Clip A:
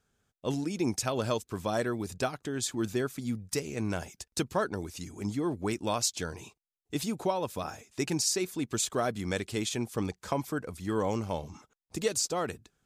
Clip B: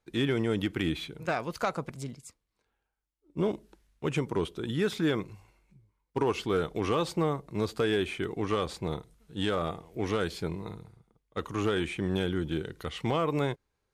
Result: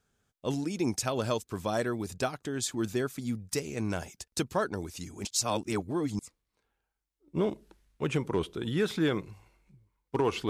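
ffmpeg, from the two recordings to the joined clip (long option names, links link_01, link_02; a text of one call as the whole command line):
ffmpeg -i cue0.wav -i cue1.wav -filter_complex "[0:a]apad=whole_dur=10.49,atrim=end=10.49,asplit=2[link_01][link_02];[link_01]atrim=end=5.252[link_03];[link_02]atrim=start=5.248:end=6.192,asetpts=PTS-STARTPTS,areverse[link_04];[1:a]atrim=start=2.208:end=6.51[link_05];[link_03][link_04]acrossfade=duration=0.004:curve1=hsin:curve2=hsin[link_06];[link_06][link_05]acrossfade=duration=0.004:curve1=hsin:curve2=hsin" out.wav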